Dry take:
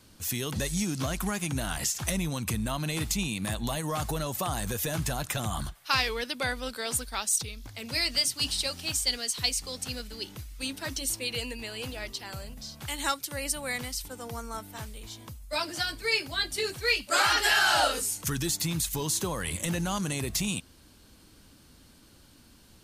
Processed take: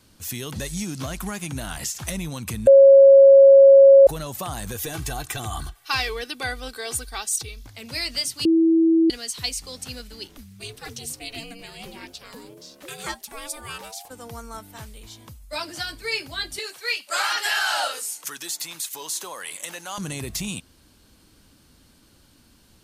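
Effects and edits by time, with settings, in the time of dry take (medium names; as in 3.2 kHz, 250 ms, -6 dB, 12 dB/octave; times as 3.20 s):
2.67–4.07 s: bleep 548 Hz -6.5 dBFS
4.76–7.63 s: comb 2.6 ms, depth 62%
8.45–9.10 s: bleep 327 Hz -13.5 dBFS
10.27–14.09 s: ring modulator 130 Hz -> 780 Hz
16.59–19.98 s: high-pass 600 Hz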